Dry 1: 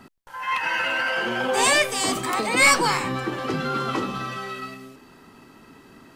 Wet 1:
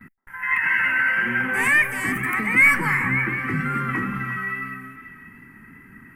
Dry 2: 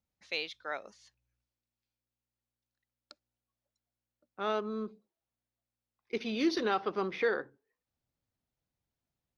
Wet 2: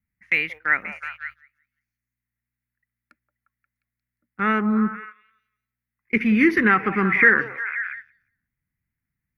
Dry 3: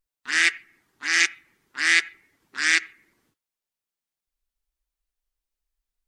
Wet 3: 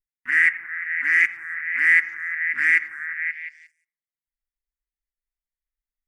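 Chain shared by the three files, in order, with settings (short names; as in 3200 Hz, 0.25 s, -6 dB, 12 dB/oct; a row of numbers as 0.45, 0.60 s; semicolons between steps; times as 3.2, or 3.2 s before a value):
EQ curve 210 Hz 0 dB, 610 Hz -22 dB, 1300 Hz -6 dB, 2000 Hz +7 dB, 3800 Hz -30 dB, 7600 Hz -20 dB, 11000 Hz -4 dB; delay with a stepping band-pass 0.177 s, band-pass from 710 Hz, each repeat 0.7 oct, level -7 dB; wow and flutter 20 cents; gate -56 dBFS, range -12 dB; in parallel at +2.5 dB: limiter -16.5 dBFS; on the sum: match loudness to -20 LUFS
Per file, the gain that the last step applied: -2.0, +12.5, -3.5 dB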